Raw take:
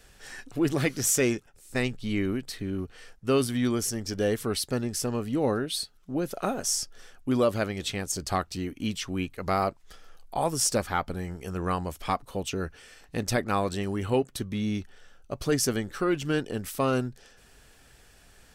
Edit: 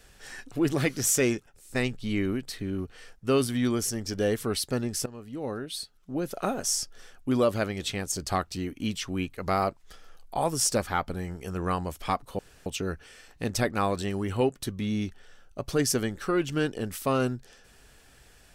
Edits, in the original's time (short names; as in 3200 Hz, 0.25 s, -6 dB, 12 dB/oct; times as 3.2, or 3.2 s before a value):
5.06–6.44 fade in, from -16 dB
12.39 insert room tone 0.27 s